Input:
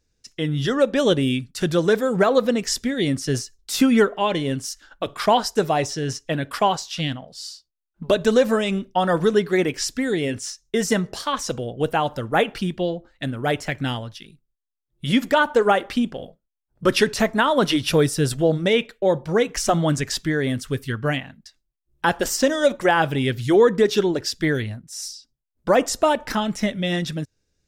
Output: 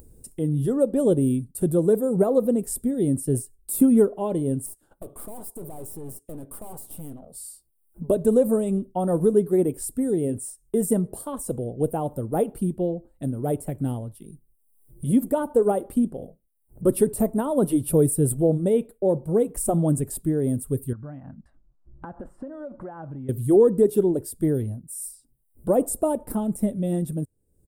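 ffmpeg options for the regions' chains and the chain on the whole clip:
ffmpeg -i in.wav -filter_complex "[0:a]asettb=1/sr,asplit=3[link_01][link_02][link_03];[link_01]atrim=end=4.664[link_04];[link_02]atrim=start=4.66:end=7.34,asetpts=PTS-STARTPTS,afade=type=in:duration=0.004:curve=qsin,afade=type=out:start_time=2.676:duration=0.004:curve=qsin,highpass=frequency=220:poles=1,aeval=exprs='(tanh(56.2*val(0)+0.65)-tanh(0.65))/56.2':channel_layout=same[link_05];[link_03]atrim=start=7.336[link_06];[link_04][link_05]acrossfade=duration=0.004:curve1=hsin:curve2=qsin[link_07];[link_07][link_06]acrossfade=duration=0.004:curve1=qsin:curve2=hsin,asettb=1/sr,asplit=3[link_08][link_09][link_10];[link_08]atrim=end=20.934[link_11];[link_09]atrim=start=20.93:end=23.29,asetpts=PTS-STARTPTS,afade=type=in:duration=0.004:curve=qsin,afade=type=out:start_time=2.356:duration=0.004:curve=qsin,equalizer=frequency=420:width=3.7:gain=-12,acompressor=threshold=-37dB:ratio=3:attack=3.2:release=140:knee=1:detection=peak,lowpass=frequency=1500:width_type=q:width=2.5[link_12];[link_10]atrim=start=23.286[link_13];[link_11][link_12]acrossfade=duration=0.004:curve1=hsin:curve2=qsin[link_14];[link_14][link_13]acrossfade=duration=0.004:curve1=qsin:curve2=hsin,firequalizer=gain_entry='entry(390,0);entry(1700,-26);entry(6100,-25);entry(8700,6)':delay=0.05:min_phase=1,acompressor=mode=upward:threshold=-32dB:ratio=2.5" out.wav

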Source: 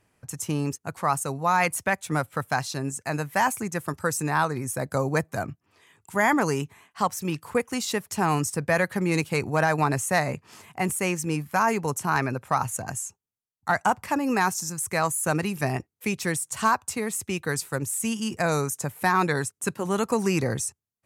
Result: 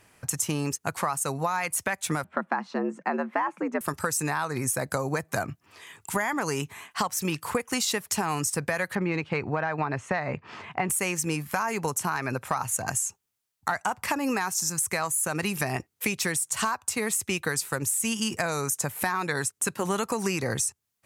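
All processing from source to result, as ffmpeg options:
ffmpeg -i in.wav -filter_complex "[0:a]asettb=1/sr,asplit=3[link_01][link_02][link_03];[link_01]atrim=end=2.244[link_04];[link_02]atrim=start=2.24:end=3.81,asetpts=PTS-STARTPTS,afade=type=in:duration=0.004:curve=qsin,afade=type=out:start_time=1.566:duration=0.004:curve=qsin,lowpass=1300,afreqshift=80[link_05];[link_03]atrim=start=3.806[link_06];[link_04][link_05]acrossfade=duration=0.004:curve1=hsin:curve2=qsin[link_07];[link_07][link_06]acrossfade=duration=0.004:curve1=qsin:curve2=hsin,asettb=1/sr,asplit=3[link_08][link_09][link_10];[link_08]atrim=end=8.954[link_11];[link_09]atrim=start=8.95:end=10.9,asetpts=PTS-STARTPTS,afade=type=in:duration=0.004:curve=qsin,afade=type=out:start_time=1.946:duration=0.004:curve=qsin,lowpass=3200,aemphasis=mode=reproduction:type=50kf[link_12];[link_10]atrim=start=10.896[link_13];[link_11][link_12]acrossfade=duration=0.004:curve1=hsin:curve2=qsin[link_14];[link_14][link_13]acrossfade=duration=0.004:curve1=qsin:curve2=hsin,tiltshelf=frequency=700:gain=-3.5,alimiter=limit=-15dB:level=0:latency=1:release=157,acompressor=threshold=-33dB:ratio=6,volume=8.5dB" out.wav

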